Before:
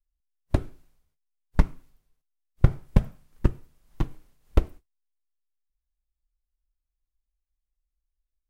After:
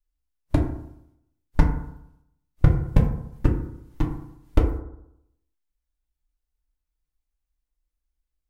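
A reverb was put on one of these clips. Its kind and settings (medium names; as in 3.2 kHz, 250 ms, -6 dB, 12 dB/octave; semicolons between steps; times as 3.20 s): FDN reverb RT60 0.78 s, low-frequency decay 1.05×, high-frequency decay 0.3×, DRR 0 dB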